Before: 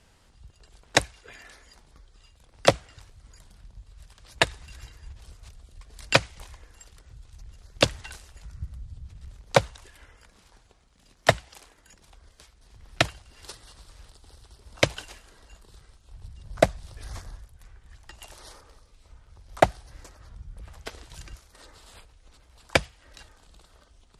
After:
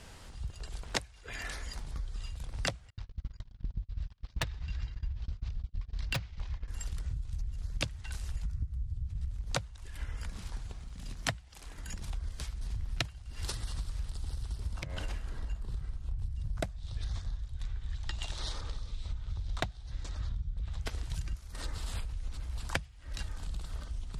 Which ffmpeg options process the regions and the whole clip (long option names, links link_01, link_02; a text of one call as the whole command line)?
ffmpeg -i in.wav -filter_complex "[0:a]asettb=1/sr,asplit=3[link_01][link_02][link_03];[link_01]atrim=end=2.904[link_04];[link_02]atrim=start=2.9:end=6.68,asetpts=PTS-STARTPTS,afade=type=in:duration=0.004:curve=qsin,afade=type=out:start_time=3.776:duration=0.004:curve=qsin,lowpass=frequency=5200:width=0.5412,lowpass=frequency=5200:width=1.3066,agate=range=-35dB:threshold=-49dB:ratio=16:release=100:detection=peak,asoftclip=type=hard:threshold=-20dB[link_05];[link_03]atrim=start=6.676[link_06];[link_04][link_05]acrossfade=duration=0.004:curve1=hsin:curve2=qsin[link_07];[link_07][link_06]acrossfade=duration=0.004:curve1=qsin:curve2=hsin,asettb=1/sr,asplit=3[link_08][link_09][link_10];[link_08]atrim=end=14.794[link_11];[link_09]atrim=start=14.79:end=16.19,asetpts=PTS-STARTPTS,afade=type=in:duration=0.004:curve=qsin,afade=type=out:start_time=1.396:duration=0.004:curve=qsin,highshelf=frequency=3000:gain=-10.5,bandreject=frequency=90.12:width_type=h:width=4,bandreject=frequency=180.24:width_type=h:width=4,bandreject=frequency=270.36:width_type=h:width=4,bandreject=frequency=360.48:width_type=h:width=4,bandreject=frequency=450.6:width_type=h:width=4,bandreject=frequency=540.72:width_type=h:width=4,bandreject=frequency=630.84:width_type=h:width=4,bandreject=frequency=720.96:width_type=h:width=4,bandreject=frequency=811.08:width_type=h:width=4,bandreject=frequency=901.2:width_type=h:width=4,bandreject=frequency=991.32:width_type=h:width=4,bandreject=frequency=1081.44:width_type=h:width=4,bandreject=frequency=1171.56:width_type=h:width=4,bandreject=frequency=1261.68:width_type=h:width=4,bandreject=frequency=1351.8:width_type=h:width=4,bandreject=frequency=1441.92:width_type=h:width=4,bandreject=frequency=1532.04:width_type=h:width=4,bandreject=frequency=1622.16:width_type=h:width=4,bandreject=frequency=1712.28:width_type=h:width=4,bandreject=frequency=1802.4:width_type=h:width=4,bandreject=frequency=1892.52:width_type=h:width=4,bandreject=frequency=1982.64:width_type=h:width=4,bandreject=frequency=2072.76:width_type=h:width=4,bandreject=frequency=2162.88:width_type=h:width=4,acompressor=threshold=-41dB:ratio=16:attack=3.2:release=140:knee=1:detection=peak[link_12];[link_10]atrim=start=16.186[link_13];[link_11][link_12]acrossfade=duration=0.004:curve1=hsin:curve2=qsin[link_14];[link_14][link_13]acrossfade=duration=0.004:curve1=qsin:curve2=hsin,asettb=1/sr,asplit=3[link_15][link_16][link_17];[link_15]atrim=end=16.764[link_18];[link_16]atrim=start=16.76:end=20.81,asetpts=PTS-STARTPTS,afade=type=in:duration=0.004:curve=qsin,afade=type=out:start_time=4.046:duration=0.004:curve=qsin,lowpass=frequency=8300:width=0.5412,lowpass=frequency=8300:width=1.3066,equalizer=frequency=3700:width_type=o:width=0.48:gain=10,aeval=exprs='0.473*(abs(mod(val(0)/0.473+3,4)-2)-1)':channel_layout=same[link_19];[link_17]atrim=start=20.806[link_20];[link_18][link_19]acrossfade=duration=0.004:curve1=hsin:curve2=qsin[link_21];[link_21][link_20]acrossfade=duration=0.004:curve1=qsin:curve2=hsin,asubboost=boost=4:cutoff=200,acompressor=threshold=-40dB:ratio=16,volume=8.5dB" out.wav